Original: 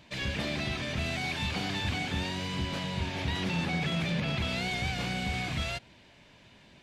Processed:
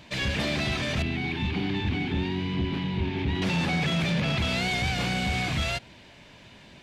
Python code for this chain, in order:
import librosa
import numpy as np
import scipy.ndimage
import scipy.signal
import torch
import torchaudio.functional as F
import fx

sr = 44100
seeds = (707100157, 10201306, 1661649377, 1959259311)

y = fx.curve_eq(x, sr, hz=(140.0, 390.0, 570.0, 820.0, 1300.0, 2200.0, 3600.0, 7700.0, 11000.0), db=(0, 5, -20, -3, -10, -4, -7, -25, -18), at=(1.02, 3.42))
y = 10.0 ** (-25.5 / 20.0) * np.tanh(y / 10.0 ** (-25.5 / 20.0))
y = F.gain(torch.from_numpy(y), 6.5).numpy()